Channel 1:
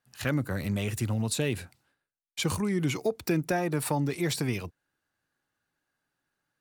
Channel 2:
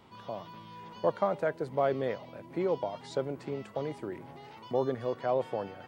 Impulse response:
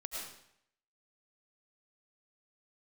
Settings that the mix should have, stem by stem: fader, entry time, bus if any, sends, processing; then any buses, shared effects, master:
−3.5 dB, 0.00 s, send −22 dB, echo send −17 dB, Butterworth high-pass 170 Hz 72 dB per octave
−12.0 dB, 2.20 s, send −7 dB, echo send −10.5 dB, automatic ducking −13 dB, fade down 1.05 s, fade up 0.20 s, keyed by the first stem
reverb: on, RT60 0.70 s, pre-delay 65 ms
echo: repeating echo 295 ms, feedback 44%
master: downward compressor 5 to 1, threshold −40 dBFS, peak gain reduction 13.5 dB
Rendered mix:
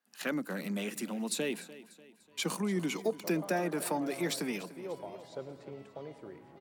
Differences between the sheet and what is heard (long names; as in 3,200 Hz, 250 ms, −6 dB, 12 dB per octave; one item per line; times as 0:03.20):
stem 1: send off
master: missing downward compressor 5 to 1, threshold −40 dBFS, peak gain reduction 13.5 dB